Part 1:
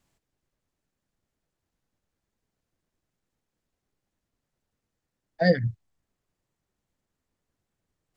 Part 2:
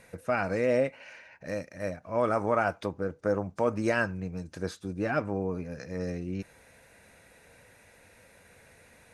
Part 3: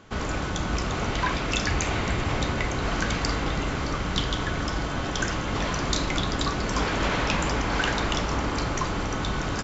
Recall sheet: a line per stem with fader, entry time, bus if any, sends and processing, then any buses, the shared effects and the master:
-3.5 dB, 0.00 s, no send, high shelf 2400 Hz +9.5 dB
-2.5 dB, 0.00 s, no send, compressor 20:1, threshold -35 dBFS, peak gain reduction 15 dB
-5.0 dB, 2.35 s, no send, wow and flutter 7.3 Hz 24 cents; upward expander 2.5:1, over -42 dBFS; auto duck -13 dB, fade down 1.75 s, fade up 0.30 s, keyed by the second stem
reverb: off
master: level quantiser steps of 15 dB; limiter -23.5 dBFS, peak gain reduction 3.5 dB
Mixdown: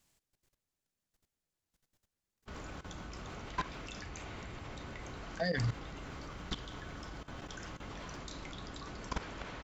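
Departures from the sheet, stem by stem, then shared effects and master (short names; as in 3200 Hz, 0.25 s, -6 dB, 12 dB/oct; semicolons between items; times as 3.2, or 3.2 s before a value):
stem 1 -3.5 dB -> +3.0 dB; stem 2: muted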